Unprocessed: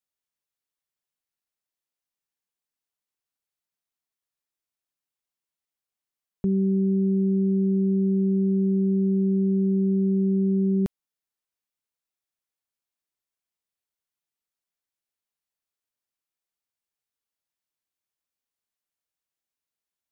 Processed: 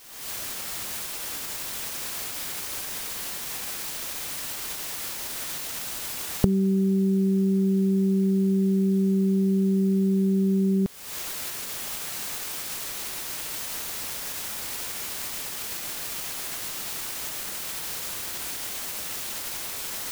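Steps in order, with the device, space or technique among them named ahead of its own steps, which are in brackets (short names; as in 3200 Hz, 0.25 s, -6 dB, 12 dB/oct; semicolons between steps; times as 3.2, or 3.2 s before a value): cheap recorder with automatic gain (white noise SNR 22 dB; recorder AGC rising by 58 dB/s)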